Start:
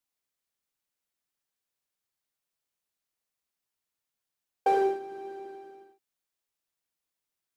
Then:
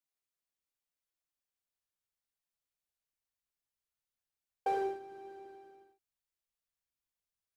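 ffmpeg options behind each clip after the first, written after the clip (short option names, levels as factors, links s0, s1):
-af "asubboost=boost=3.5:cutoff=120,volume=0.422"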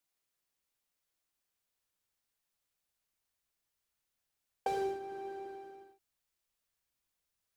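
-filter_complex "[0:a]acrossover=split=250|3000[s0][s1][s2];[s1]acompressor=threshold=0.01:ratio=6[s3];[s0][s3][s2]amix=inputs=3:normalize=0,volume=2.11"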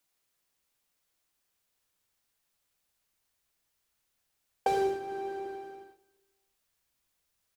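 -af "aecho=1:1:206|412|618:0.0891|0.0374|0.0157,volume=2.11"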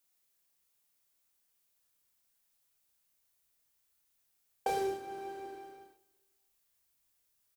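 -filter_complex "[0:a]asplit=2[s0][s1];[s1]adelay=29,volume=0.631[s2];[s0][s2]amix=inputs=2:normalize=0,crystalizer=i=1:c=0,volume=0.531"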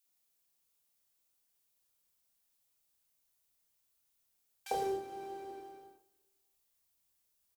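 -filter_complex "[0:a]acrossover=split=1700[s0][s1];[s0]adelay=50[s2];[s2][s1]amix=inputs=2:normalize=0,volume=0.841"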